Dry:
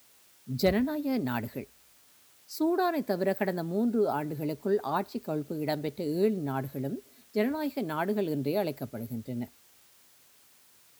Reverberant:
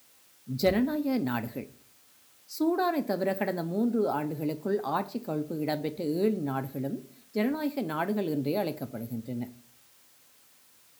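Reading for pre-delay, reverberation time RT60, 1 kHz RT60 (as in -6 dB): 4 ms, 0.45 s, 0.40 s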